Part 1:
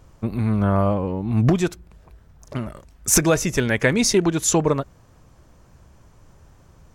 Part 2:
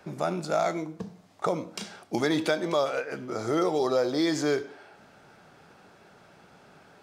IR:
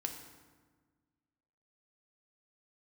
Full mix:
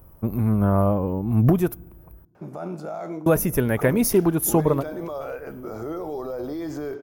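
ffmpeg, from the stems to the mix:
-filter_complex "[0:a]aexciter=amount=7.6:drive=6.7:freq=9900,volume=-0.5dB,asplit=3[link_01][link_02][link_03];[link_01]atrim=end=2.25,asetpts=PTS-STARTPTS,afade=type=out:start_time=2.246:duration=0.004:curve=hsin[link_04];[link_02]atrim=start=2.25:end=3.26,asetpts=PTS-STARTPTS,volume=0[link_05];[link_03]atrim=start=3.26,asetpts=PTS-STARTPTS,afade=type=in:duration=0.004:curve=hsin[link_06];[link_04][link_05][link_06]concat=n=3:v=0:a=1,asplit=2[link_07][link_08];[link_08]volume=-21.5dB[link_09];[1:a]alimiter=limit=-23.5dB:level=0:latency=1:release=30,adelay=2350,volume=1dB[link_10];[2:a]atrim=start_sample=2205[link_11];[link_09][link_11]afir=irnorm=-1:irlink=0[link_12];[link_07][link_10][link_12]amix=inputs=3:normalize=0,equalizer=frequency=2000:width_type=o:width=1:gain=-6,equalizer=frequency=4000:width_type=o:width=1:gain=-12,equalizer=frequency=8000:width_type=o:width=1:gain=-10"

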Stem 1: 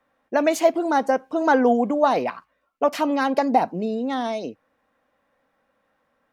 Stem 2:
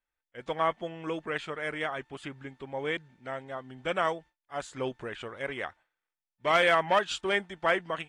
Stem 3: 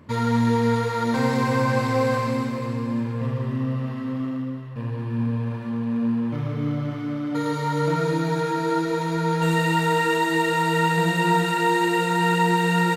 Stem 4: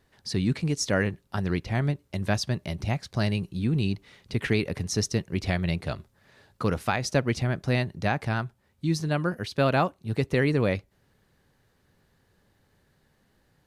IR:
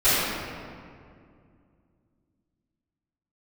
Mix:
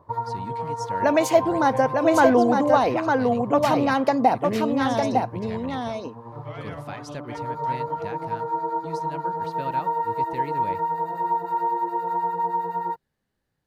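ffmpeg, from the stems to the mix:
-filter_complex "[0:a]adelay=700,volume=0dB,asplit=2[link_01][link_02];[link_02]volume=-4dB[link_03];[1:a]lowpass=5000,volume=-19dB[link_04];[2:a]acrossover=split=1300[link_05][link_06];[link_05]aeval=exprs='val(0)*(1-0.7/2+0.7/2*cos(2*PI*9.7*n/s))':channel_layout=same[link_07];[link_06]aeval=exprs='val(0)*(1-0.7/2-0.7/2*cos(2*PI*9.7*n/s))':channel_layout=same[link_08];[link_07][link_08]amix=inputs=2:normalize=0,acompressor=threshold=-27dB:ratio=6,firequalizer=gain_entry='entry(130,0);entry(220,-14);entry(360,3);entry(930,14);entry(1400,-2);entry(2800,-22);entry(4600,-12);entry(7800,-21);entry(14000,-4)':delay=0.05:min_phase=1,volume=-4dB[link_09];[3:a]volume=-12.5dB[link_10];[link_03]aecho=0:1:905:1[link_11];[link_01][link_04][link_09][link_10][link_11]amix=inputs=5:normalize=0"

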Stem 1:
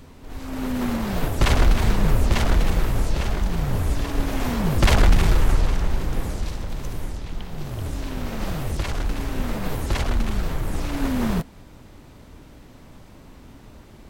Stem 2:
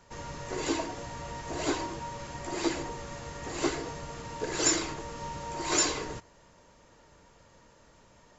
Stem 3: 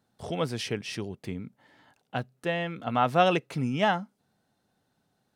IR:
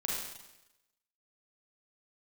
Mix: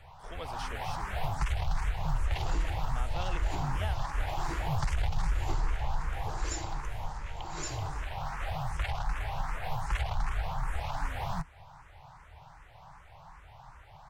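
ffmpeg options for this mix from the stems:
-filter_complex "[0:a]firequalizer=gain_entry='entry(150,0);entry(220,-24);entry(790,13);entry(1200,8);entry(3800,-1);entry(14000,-10)':delay=0.05:min_phase=1,asplit=2[link_01][link_02];[link_02]afreqshift=2.6[link_03];[link_01][link_03]amix=inputs=2:normalize=1,volume=-5dB[link_04];[1:a]adelay=1850,volume=-14dB[link_05];[2:a]highpass=frequency=660:poles=1,volume=-9.5dB[link_06];[link_04][link_06]amix=inputs=2:normalize=0,acrossover=split=410|3000[link_07][link_08][link_09];[link_08]acompressor=threshold=-36dB:ratio=6[link_10];[link_07][link_10][link_09]amix=inputs=3:normalize=0,alimiter=limit=-20dB:level=0:latency=1:release=359,volume=0dB[link_11];[link_05][link_11]amix=inputs=2:normalize=0"

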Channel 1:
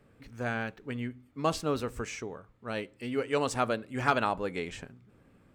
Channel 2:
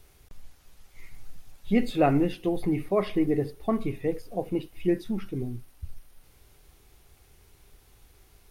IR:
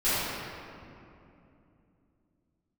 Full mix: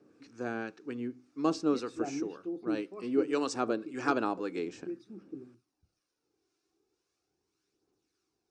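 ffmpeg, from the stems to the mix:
-filter_complex "[0:a]volume=0.5dB[link_01];[1:a]aphaser=in_gain=1:out_gain=1:delay=3:decay=0.36:speed=0.38:type=triangular,volume=-16.5dB[link_02];[link_01][link_02]amix=inputs=2:normalize=0,equalizer=frequency=310:width=2.4:gain=11.5,acrossover=split=930[link_03][link_04];[link_03]aeval=exprs='val(0)*(1-0.5/2+0.5/2*cos(2*PI*1.9*n/s))':channel_layout=same[link_05];[link_04]aeval=exprs='val(0)*(1-0.5/2-0.5/2*cos(2*PI*1.9*n/s))':channel_layout=same[link_06];[link_05][link_06]amix=inputs=2:normalize=0,highpass=230,equalizer=frequency=240:width_type=q:width=4:gain=-3,equalizer=frequency=610:width_type=q:width=4:gain=-6,equalizer=frequency=920:width_type=q:width=4:gain=-4,equalizer=frequency=2000:width_type=q:width=4:gain=-9,equalizer=frequency=3200:width_type=q:width=4:gain=-8,equalizer=frequency=5400:width_type=q:width=4:gain=5,lowpass=frequency=7500:width=0.5412,lowpass=frequency=7500:width=1.3066"

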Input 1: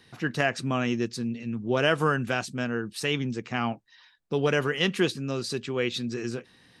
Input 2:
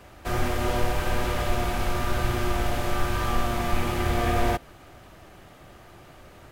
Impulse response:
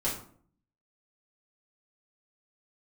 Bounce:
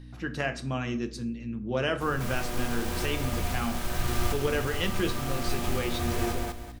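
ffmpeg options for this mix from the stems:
-filter_complex "[0:a]aeval=exprs='val(0)+0.0141*(sin(2*PI*60*n/s)+sin(2*PI*2*60*n/s)/2+sin(2*PI*3*60*n/s)/3+sin(2*PI*4*60*n/s)/4+sin(2*PI*5*60*n/s)/5)':channel_layout=same,volume=-7.5dB,asplit=3[link_01][link_02][link_03];[link_02]volume=-11.5dB[link_04];[1:a]bass=frequency=250:gain=4,treble=frequency=4000:gain=3,acrusher=bits=4:mix=0:aa=0.000001,adelay=1750,volume=-5dB,asplit=2[link_05][link_06];[link_06]volume=-6dB[link_07];[link_03]apad=whole_len=364488[link_08];[link_05][link_08]sidechaincompress=threshold=-37dB:ratio=8:attack=16:release=683[link_09];[2:a]atrim=start_sample=2205[link_10];[link_04][link_10]afir=irnorm=-1:irlink=0[link_11];[link_07]aecho=0:1:198|396|594|792:1|0.3|0.09|0.027[link_12];[link_01][link_09][link_11][link_12]amix=inputs=4:normalize=0"

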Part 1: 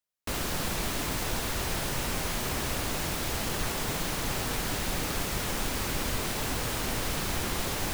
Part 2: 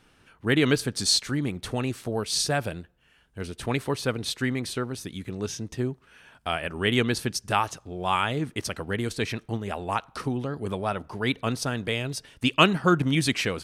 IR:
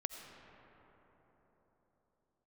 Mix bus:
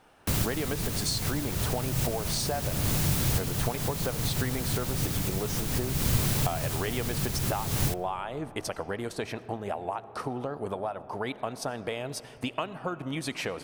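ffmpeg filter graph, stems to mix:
-filter_complex "[0:a]equalizer=frequency=130:width=0.88:gain=14.5,acrossover=split=130|3000[link_01][link_02][link_03];[link_02]acompressor=threshold=-31dB:ratio=6[link_04];[link_01][link_04][link_03]amix=inputs=3:normalize=0,volume=0dB,asplit=2[link_05][link_06];[link_06]volume=-15.5dB[link_07];[1:a]equalizer=frequency=730:width=0.87:gain=14.5,acompressor=threshold=-24dB:ratio=16,volume=-7.5dB,asplit=3[link_08][link_09][link_10];[link_09]volume=-6.5dB[link_11];[link_10]apad=whole_len=350089[link_12];[link_05][link_12]sidechaincompress=threshold=-42dB:ratio=8:attack=16:release=201[link_13];[2:a]atrim=start_sample=2205[link_14];[link_07][link_11]amix=inputs=2:normalize=0[link_15];[link_15][link_14]afir=irnorm=-1:irlink=0[link_16];[link_13][link_08][link_16]amix=inputs=3:normalize=0,highshelf=frequency=9700:gain=7.5"

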